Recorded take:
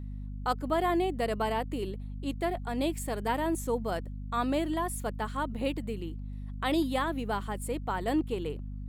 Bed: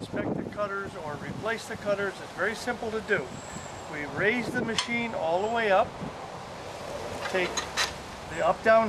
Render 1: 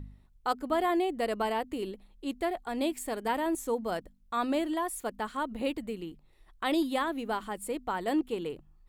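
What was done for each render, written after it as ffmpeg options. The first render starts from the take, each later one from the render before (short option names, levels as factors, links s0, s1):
-af "bandreject=f=50:t=h:w=4,bandreject=f=100:t=h:w=4,bandreject=f=150:t=h:w=4,bandreject=f=200:t=h:w=4,bandreject=f=250:t=h:w=4"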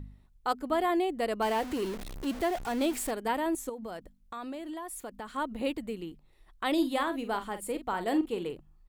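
-filter_complex "[0:a]asettb=1/sr,asplit=3[s0][s1][s2];[s0]atrim=end=1.424[s3];[s1]atrim=start=1.42:end=3.11,asetpts=PTS-STARTPTS,afade=t=in:d=0.004:c=qsin,afade=t=out:st=1.686:d=0.004:c=qsin,aeval=exprs='val(0)+0.5*0.0178*sgn(val(0))':c=same[s4];[s2]atrim=start=3.106[s5];[s3][s4]acrossfade=d=0.004:c1=hsin:c2=qsin[s6];[s6][s5]acrossfade=d=0.004:c1=qsin:c2=hsin,asettb=1/sr,asplit=3[s7][s8][s9];[s7]atrim=end=3.694[s10];[s8]atrim=start=3.69:end=5.32,asetpts=PTS-STARTPTS,afade=t=in:d=0.004:c=qsin,afade=t=out:st=1.626:d=0.004:c=qsin,acompressor=threshold=0.0158:ratio=6:attack=3.2:release=140:knee=1:detection=peak[s11];[s9]atrim=start=5.316[s12];[s10][s11]acrossfade=d=0.004:c1=hsin:c2=qsin[s13];[s13][s12]acrossfade=d=0.004:c1=qsin:c2=hsin,asplit=3[s14][s15][s16];[s14]afade=t=out:st=6.76:d=0.02[s17];[s15]asplit=2[s18][s19];[s19]adelay=45,volume=0.316[s20];[s18][s20]amix=inputs=2:normalize=0,afade=t=in:st=6.76:d=0.02,afade=t=out:st=8.5:d=0.02[s21];[s16]afade=t=in:st=8.5:d=0.02[s22];[s17][s21][s22]amix=inputs=3:normalize=0"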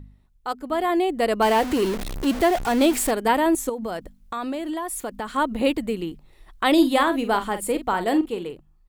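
-af "dynaudnorm=f=180:g=11:m=3.35"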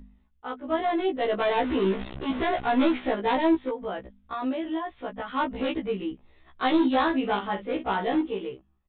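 -af "aresample=8000,asoftclip=type=hard:threshold=0.133,aresample=44100,afftfilt=real='re*1.73*eq(mod(b,3),0)':imag='im*1.73*eq(mod(b,3),0)':win_size=2048:overlap=0.75"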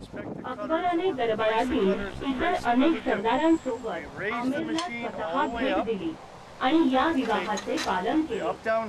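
-filter_complex "[1:a]volume=0.501[s0];[0:a][s0]amix=inputs=2:normalize=0"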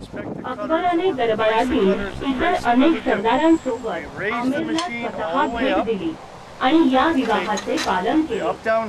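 -af "volume=2.11"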